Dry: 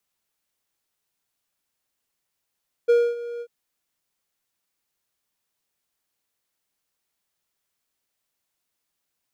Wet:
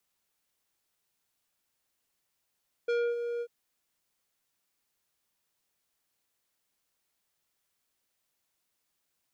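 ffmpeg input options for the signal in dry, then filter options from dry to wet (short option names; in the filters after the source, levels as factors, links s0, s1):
-f lavfi -i "aevalsrc='0.299*(1-4*abs(mod(474*t+0.25,1)-0.5))':d=0.591:s=44100,afade=t=in:d=0.018,afade=t=out:st=0.018:d=0.252:silence=0.141,afade=t=out:st=0.53:d=0.061"
-filter_complex "[0:a]acrossover=split=650|2900[s0][s1][s2];[s1]acompressor=threshold=0.01:ratio=6[s3];[s0][s3][s2]amix=inputs=3:normalize=0,asoftclip=type=tanh:threshold=0.0422"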